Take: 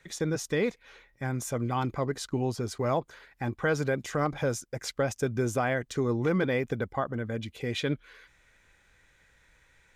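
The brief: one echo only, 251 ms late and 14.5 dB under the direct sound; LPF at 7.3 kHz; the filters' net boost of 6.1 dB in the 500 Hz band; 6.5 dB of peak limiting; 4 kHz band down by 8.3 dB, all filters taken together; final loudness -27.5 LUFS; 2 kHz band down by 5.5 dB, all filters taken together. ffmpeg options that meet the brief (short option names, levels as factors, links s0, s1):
-af "lowpass=7300,equalizer=f=500:t=o:g=7.5,equalizer=f=2000:t=o:g=-6.5,equalizer=f=4000:t=o:g=-8.5,alimiter=limit=0.112:level=0:latency=1,aecho=1:1:251:0.188,volume=1.26"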